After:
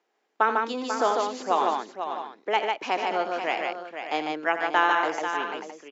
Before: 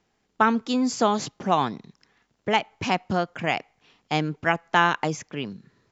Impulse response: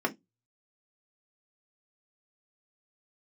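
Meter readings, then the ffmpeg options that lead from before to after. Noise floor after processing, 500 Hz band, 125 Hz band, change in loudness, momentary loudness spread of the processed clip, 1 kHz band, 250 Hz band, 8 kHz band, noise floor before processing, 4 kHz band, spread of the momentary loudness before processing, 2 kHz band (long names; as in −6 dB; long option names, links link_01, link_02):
−74 dBFS, +0.5 dB, below −20 dB, −1.5 dB, 10 LU, +0.5 dB, −8.5 dB, can't be measured, −72 dBFS, −3.0 dB, 11 LU, −0.5 dB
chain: -af "highpass=frequency=340:width=0.5412,highpass=frequency=340:width=1.3066,highshelf=frequency=3800:gain=-9,aecho=1:1:84|149|491|589|663:0.299|0.668|0.376|0.251|0.178,volume=-1.5dB"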